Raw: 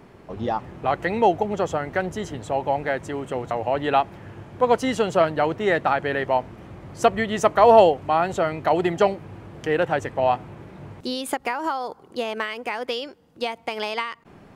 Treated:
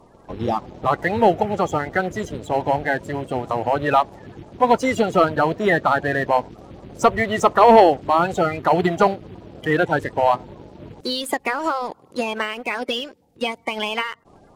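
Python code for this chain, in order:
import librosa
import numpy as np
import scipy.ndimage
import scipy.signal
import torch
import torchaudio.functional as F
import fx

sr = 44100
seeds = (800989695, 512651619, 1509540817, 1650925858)

y = fx.spec_quant(x, sr, step_db=30)
y = fx.leveller(y, sr, passes=1)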